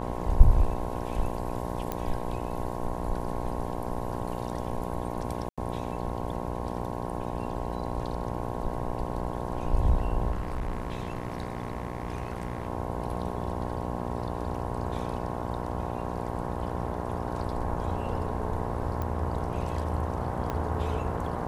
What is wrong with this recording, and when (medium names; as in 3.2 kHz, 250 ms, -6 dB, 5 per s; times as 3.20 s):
buzz 60 Hz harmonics 18 -34 dBFS
1.92 s: pop -16 dBFS
5.49–5.58 s: dropout 86 ms
10.31–12.67 s: clipped -26.5 dBFS
19.02 s: pop -20 dBFS
20.50 s: pop -18 dBFS